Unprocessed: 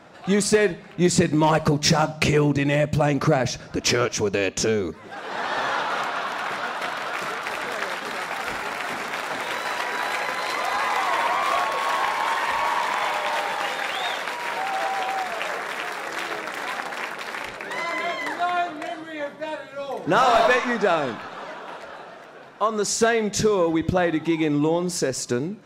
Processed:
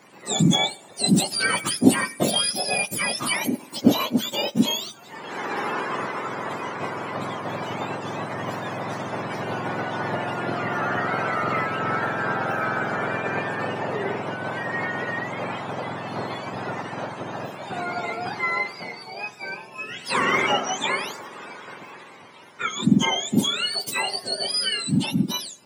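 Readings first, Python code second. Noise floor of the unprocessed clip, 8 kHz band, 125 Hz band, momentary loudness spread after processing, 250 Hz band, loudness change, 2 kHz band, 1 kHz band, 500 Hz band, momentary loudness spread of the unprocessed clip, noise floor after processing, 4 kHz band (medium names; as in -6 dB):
-42 dBFS, 0.0 dB, -2.0 dB, 13 LU, +1.0 dB, -1.5 dB, -1.5 dB, -3.5 dB, -6.0 dB, 11 LU, -45 dBFS, +3.5 dB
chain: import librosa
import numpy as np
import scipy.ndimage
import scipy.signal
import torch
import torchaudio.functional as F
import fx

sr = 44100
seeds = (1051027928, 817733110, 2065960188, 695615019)

y = fx.octave_mirror(x, sr, pivot_hz=1200.0)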